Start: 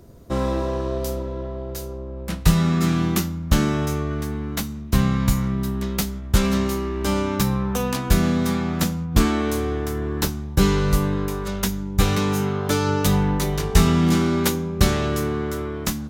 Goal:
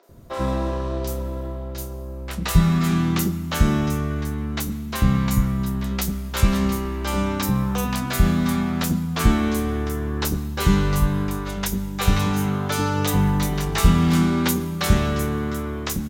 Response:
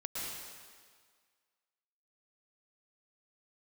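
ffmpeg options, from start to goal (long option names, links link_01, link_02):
-filter_complex "[0:a]acrossover=split=440|5500[link_01][link_02][link_03];[link_03]adelay=30[link_04];[link_01]adelay=90[link_05];[link_05][link_02][link_04]amix=inputs=3:normalize=0,asplit=2[link_06][link_07];[1:a]atrim=start_sample=2205[link_08];[link_07][link_08]afir=irnorm=-1:irlink=0,volume=-17.5dB[link_09];[link_06][link_09]amix=inputs=2:normalize=0"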